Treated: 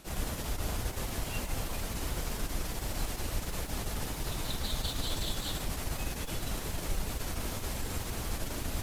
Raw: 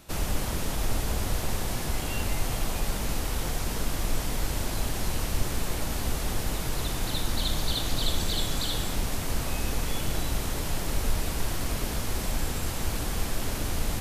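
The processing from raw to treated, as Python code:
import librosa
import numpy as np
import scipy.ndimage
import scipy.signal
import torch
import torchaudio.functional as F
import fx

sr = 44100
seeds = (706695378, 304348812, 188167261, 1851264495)

y = fx.clip_asym(x, sr, top_db=-32.0, bottom_db=-15.0)
y = fx.stretch_vocoder_free(y, sr, factor=0.63)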